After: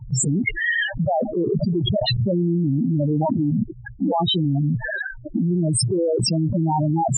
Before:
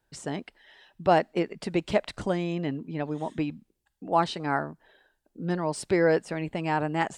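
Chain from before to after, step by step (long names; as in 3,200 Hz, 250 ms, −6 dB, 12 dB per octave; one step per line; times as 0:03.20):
0:04.41–0:05.72: treble cut that deepens with the level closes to 470 Hz, closed at −25.5 dBFS
parametric band 120 Hz +13.5 dB 0.4 octaves
spectral peaks only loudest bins 4
envelope flattener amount 100%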